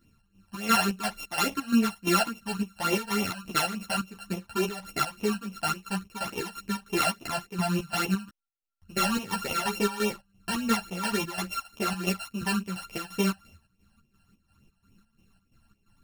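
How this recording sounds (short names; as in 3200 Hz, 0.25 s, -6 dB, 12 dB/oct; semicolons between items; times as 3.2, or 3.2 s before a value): a buzz of ramps at a fixed pitch in blocks of 32 samples; phasing stages 12, 3.5 Hz, lowest notch 360–1500 Hz; chopped level 2.9 Hz, depth 65%, duty 60%; a shimmering, thickened sound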